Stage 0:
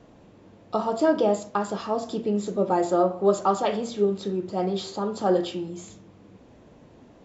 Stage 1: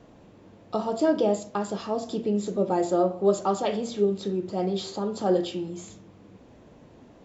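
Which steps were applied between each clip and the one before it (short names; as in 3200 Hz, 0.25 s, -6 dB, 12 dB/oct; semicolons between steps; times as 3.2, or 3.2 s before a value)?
dynamic EQ 1200 Hz, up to -6 dB, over -39 dBFS, Q 1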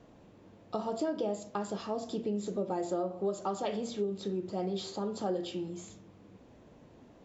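compressor 5:1, threshold -24 dBFS, peak gain reduction 8.5 dB; gain -5 dB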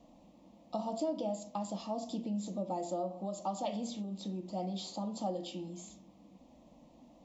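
fixed phaser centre 410 Hz, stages 6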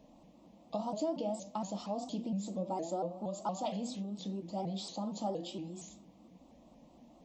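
shaped vibrato saw up 4.3 Hz, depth 160 cents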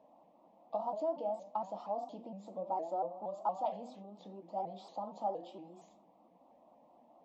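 band-pass 810 Hz, Q 1.8; gain +3.5 dB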